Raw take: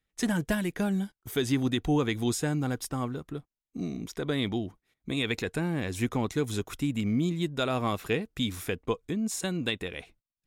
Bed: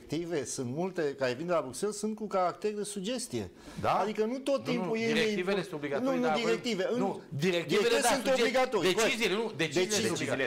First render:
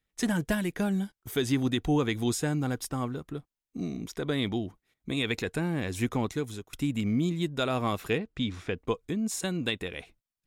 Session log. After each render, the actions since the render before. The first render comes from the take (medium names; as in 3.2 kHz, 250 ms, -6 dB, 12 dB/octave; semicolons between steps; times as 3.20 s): 6.23–6.73 s: fade out, to -19.5 dB; 8.18–8.77 s: distance through air 130 m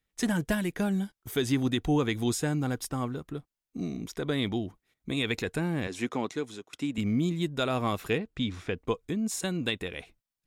5.87–6.98 s: band-pass 230–7500 Hz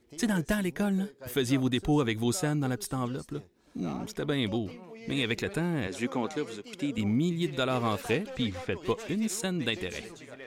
add bed -15 dB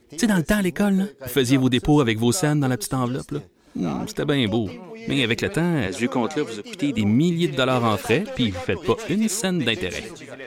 trim +8.5 dB